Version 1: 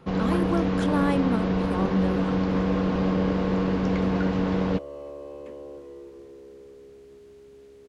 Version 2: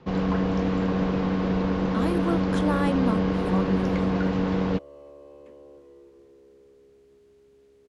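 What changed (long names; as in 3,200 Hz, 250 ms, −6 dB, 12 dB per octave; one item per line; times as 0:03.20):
speech: entry +1.75 s
second sound −8.0 dB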